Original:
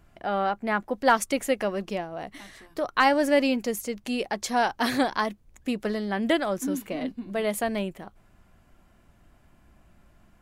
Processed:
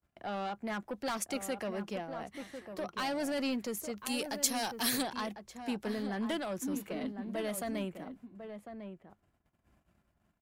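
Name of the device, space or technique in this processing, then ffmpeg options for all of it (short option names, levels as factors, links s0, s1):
one-band saturation: -filter_complex "[0:a]highpass=57,agate=range=0.0447:threshold=0.00126:ratio=16:detection=peak,acrossover=split=220|3100[s0][s1][s2];[s1]asoftclip=type=tanh:threshold=0.0422[s3];[s0][s3][s2]amix=inputs=3:normalize=0,asplit=3[s4][s5][s6];[s4]afade=t=out:st=3.98:d=0.02[s7];[s5]aemphasis=mode=production:type=75fm,afade=t=in:st=3.98:d=0.02,afade=t=out:st=5.01:d=0.02[s8];[s6]afade=t=in:st=5.01:d=0.02[s9];[s7][s8][s9]amix=inputs=3:normalize=0,asplit=2[s10][s11];[s11]adelay=1050,volume=0.398,highshelf=f=4000:g=-23.6[s12];[s10][s12]amix=inputs=2:normalize=0,volume=0.501"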